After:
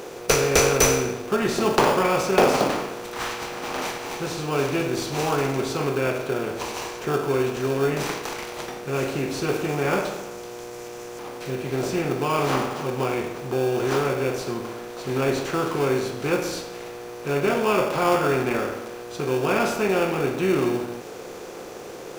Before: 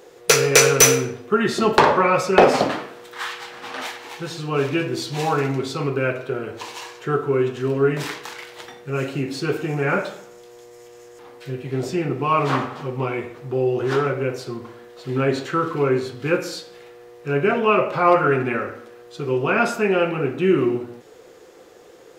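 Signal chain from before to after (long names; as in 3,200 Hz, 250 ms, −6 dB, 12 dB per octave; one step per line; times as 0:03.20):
compressor on every frequency bin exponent 0.6
in parallel at −7 dB: sample-rate reduction 2,000 Hz, jitter 0%
on the sum: level −9 dB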